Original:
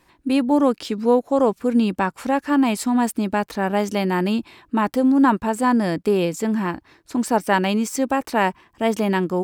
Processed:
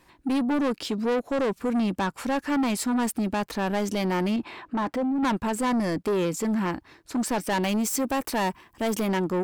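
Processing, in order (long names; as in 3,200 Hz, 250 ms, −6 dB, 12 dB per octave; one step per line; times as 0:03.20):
0:07.63–0:09.07: high-shelf EQ 10,000 Hz +11 dB
soft clipping −21 dBFS, distortion −8 dB
0:04.36–0:05.23: mid-hump overdrive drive 18 dB, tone 1,200 Hz, clips at −21 dBFS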